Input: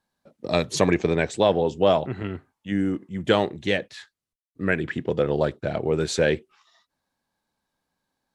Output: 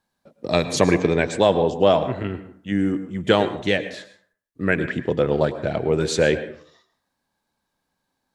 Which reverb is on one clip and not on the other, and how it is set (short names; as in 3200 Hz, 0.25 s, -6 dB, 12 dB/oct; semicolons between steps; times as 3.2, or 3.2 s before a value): plate-style reverb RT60 0.53 s, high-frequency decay 0.55×, pre-delay 95 ms, DRR 11.5 dB; gain +2.5 dB